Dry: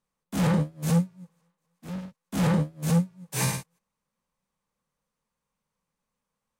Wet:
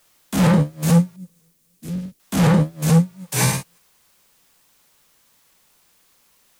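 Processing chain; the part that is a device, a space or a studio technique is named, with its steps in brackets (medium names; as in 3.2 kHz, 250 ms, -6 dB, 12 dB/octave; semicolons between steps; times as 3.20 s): noise-reduction cassette on a plain deck (tape noise reduction on one side only encoder only; wow and flutter; white noise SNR 38 dB); 1.16–2.20 s: FFT filter 360 Hz 0 dB, 870 Hz -17 dB, 9.9 kHz -3 dB; trim +8 dB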